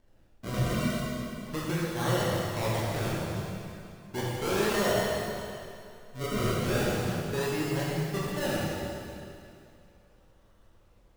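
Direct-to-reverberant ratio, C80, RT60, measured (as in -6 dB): -6.5 dB, -1.0 dB, 2.6 s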